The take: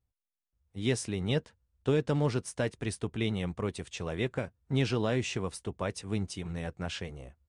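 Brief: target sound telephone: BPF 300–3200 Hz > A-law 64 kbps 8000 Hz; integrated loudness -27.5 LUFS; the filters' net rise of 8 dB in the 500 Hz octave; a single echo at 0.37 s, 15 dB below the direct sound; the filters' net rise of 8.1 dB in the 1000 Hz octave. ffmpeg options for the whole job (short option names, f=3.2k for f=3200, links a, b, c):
-af "highpass=300,lowpass=3.2k,equalizer=f=500:t=o:g=9,equalizer=f=1k:t=o:g=7.5,aecho=1:1:370:0.178,volume=1.5dB" -ar 8000 -c:a pcm_alaw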